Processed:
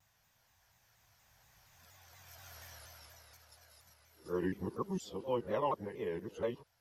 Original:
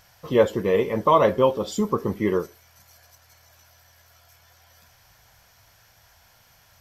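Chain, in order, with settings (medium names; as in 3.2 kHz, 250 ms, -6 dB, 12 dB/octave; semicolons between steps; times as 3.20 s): reverse the whole clip; Doppler pass-by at 2.64 s, 23 m/s, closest 6.2 m; vibrato with a chosen wave saw down 4.2 Hz, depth 160 cents; trim +3.5 dB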